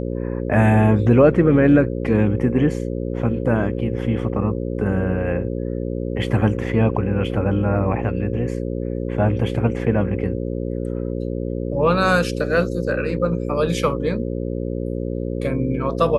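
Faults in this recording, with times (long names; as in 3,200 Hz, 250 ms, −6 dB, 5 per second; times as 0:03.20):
mains buzz 60 Hz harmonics 9 −25 dBFS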